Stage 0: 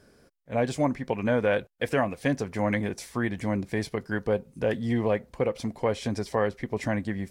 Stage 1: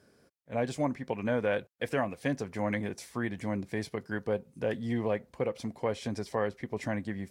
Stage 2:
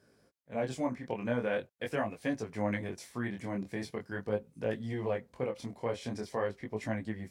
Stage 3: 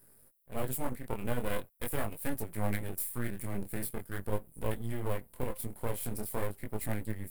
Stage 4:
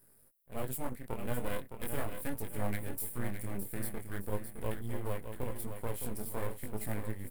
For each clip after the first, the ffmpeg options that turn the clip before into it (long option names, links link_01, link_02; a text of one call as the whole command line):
ffmpeg -i in.wav -af "highpass=77,volume=-5dB" out.wav
ffmpeg -i in.wav -af "flanger=delay=18:depth=7.5:speed=0.43" out.wav
ffmpeg -i in.wav -af "aeval=exprs='max(val(0),0)':channel_layout=same,aexciter=amount=14.6:drive=6.7:freq=8800,lowshelf=frequency=120:gain=9" out.wav
ffmpeg -i in.wav -af "aecho=1:1:613|1226|1839|2452:0.398|0.143|0.0516|0.0186,volume=-3dB" out.wav